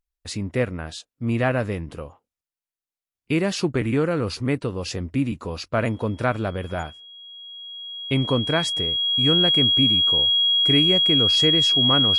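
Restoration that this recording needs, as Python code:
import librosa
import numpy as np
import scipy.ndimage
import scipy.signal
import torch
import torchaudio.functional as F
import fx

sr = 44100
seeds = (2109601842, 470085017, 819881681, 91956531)

y = fx.notch(x, sr, hz=3300.0, q=30.0)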